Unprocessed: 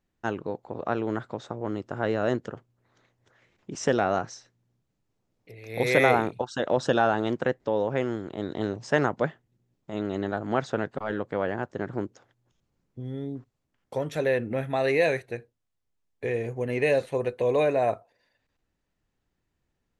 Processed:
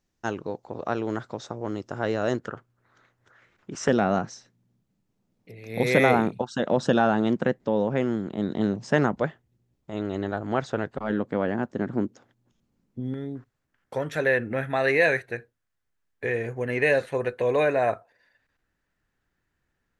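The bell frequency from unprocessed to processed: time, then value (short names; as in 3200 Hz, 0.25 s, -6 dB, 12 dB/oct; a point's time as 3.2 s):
bell +10 dB
5700 Hz
from 2.39 s 1400 Hz
from 3.88 s 200 Hz
from 9.15 s 63 Hz
from 11 s 230 Hz
from 13.14 s 1600 Hz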